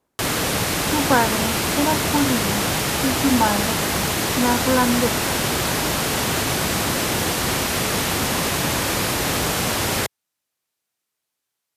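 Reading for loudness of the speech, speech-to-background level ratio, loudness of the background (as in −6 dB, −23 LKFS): −23.0 LKFS, −2.5 dB, −20.5 LKFS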